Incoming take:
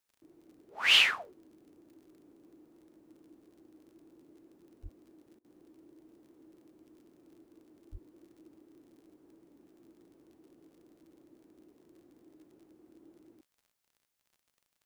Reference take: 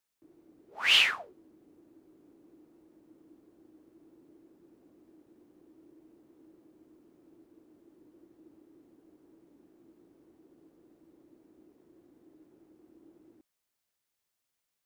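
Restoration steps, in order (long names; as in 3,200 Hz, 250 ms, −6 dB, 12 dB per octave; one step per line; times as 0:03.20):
click removal
0:04.82–0:04.94: high-pass filter 140 Hz 24 dB per octave
0:07.91–0:08.03: high-pass filter 140 Hz 24 dB per octave
repair the gap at 0:05.39, 53 ms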